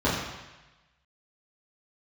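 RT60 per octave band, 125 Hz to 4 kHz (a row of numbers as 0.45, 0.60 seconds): 1.2, 0.95, 1.0, 1.1, 1.2, 1.1 seconds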